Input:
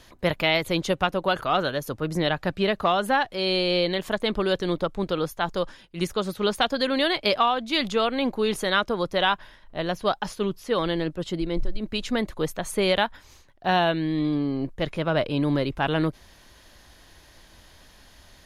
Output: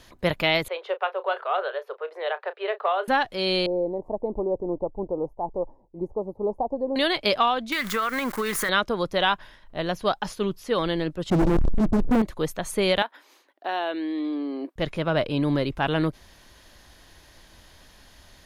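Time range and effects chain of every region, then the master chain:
0.68–3.08 steep high-pass 400 Hz 96 dB/oct + air absorption 460 m + doubler 32 ms -13.5 dB
3.66–6.96 elliptic low-pass 910 Hz + bell 170 Hz -8 dB 0.94 oct
7.72–8.69 switching spikes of -25.5 dBFS + band shelf 1500 Hz +13.5 dB 1.3 oct + compressor, threshold -22 dBFS
11.3–12.22 Gaussian blur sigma 18 samples + sample leveller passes 5
13.02–14.76 Chebyshev high-pass 290 Hz, order 4 + bell 6600 Hz -7 dB 0.99 oct + compressor 2:1, threshold -27 dBFS
whole clip: dry

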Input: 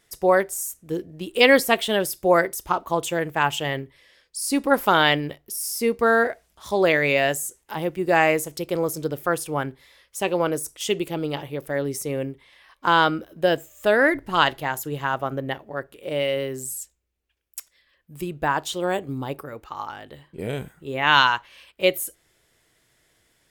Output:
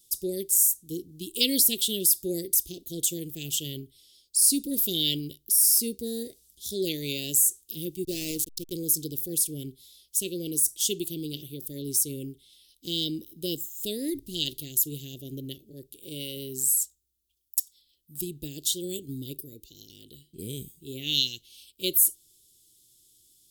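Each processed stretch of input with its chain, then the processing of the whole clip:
8.04–8.73 backlash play -23.5 dBFS + companded quantiser 8-bit
whole clip: elliptic band-stop 370–3500 Hz, stop band 60 dB; pre-emphasis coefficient 0.8; gain +8.5 dB

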